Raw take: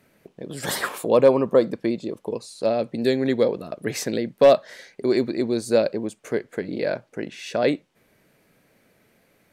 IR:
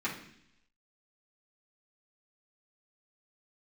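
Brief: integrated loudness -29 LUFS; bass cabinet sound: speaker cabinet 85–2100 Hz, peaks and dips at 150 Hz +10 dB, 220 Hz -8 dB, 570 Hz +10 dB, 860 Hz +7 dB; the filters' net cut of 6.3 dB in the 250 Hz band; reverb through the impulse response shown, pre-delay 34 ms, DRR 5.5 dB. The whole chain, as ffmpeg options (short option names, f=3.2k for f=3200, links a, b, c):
-filter_complex "[0:a]equalizer=f=250:t=o:g=-7.5,asplit=2[a][b];[1:a]atrim=start_sample=2205,adelay=34[c];[b][c]afir=irnorm=-1:irlink=0,volume=-12dB[d];[a][d]amix=inputs=2:normalize=0,highpass=f=85:w=0.5412,highpass=f=85:w=1.3066,equalizer=f=150:t=q:w=4:g=10,equalizer=f=220:t=q:w=4:g=-8,equalizer=f=570:t=q:w=4:g=10,equalizer=f=860:t=q:w=4:g=7,lowpass=f=2.1k:w=0.5412,lowpass=f=2.1k:w=1.3066,volume=-12.5dB"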